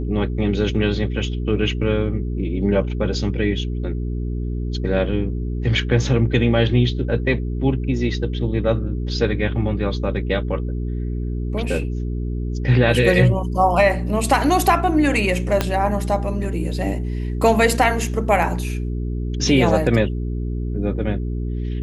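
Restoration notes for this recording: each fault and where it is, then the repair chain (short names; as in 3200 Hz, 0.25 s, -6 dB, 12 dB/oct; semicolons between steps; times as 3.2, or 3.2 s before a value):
hum 60 Hz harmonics 7 -24 dBFS
15.61 pop -4 dBFS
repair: de-click; de-hum 60 Hz, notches 7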